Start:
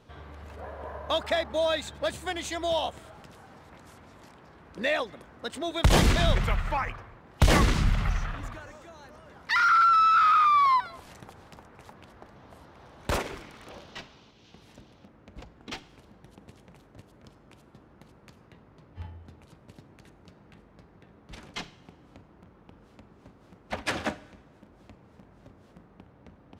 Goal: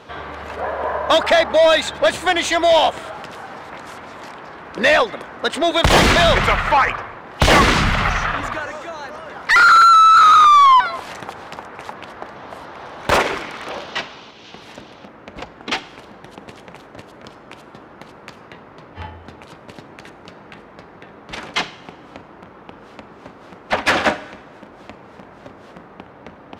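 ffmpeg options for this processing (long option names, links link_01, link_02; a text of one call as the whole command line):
ffmpeg -i in.wav -filter_complex "[0:a]asplit=2[link_01][link_02];[link_02]highpass=frequency=720:poles=1,volume=20dB,asoftclip=type=tanh:threshold=-9.5dB[link_03];[link_01][link_03]amix=inputs=2:normalize=0,lowpass=frequency=2700:poles=1,volume=-6dB,volume=6.5dB" out.wav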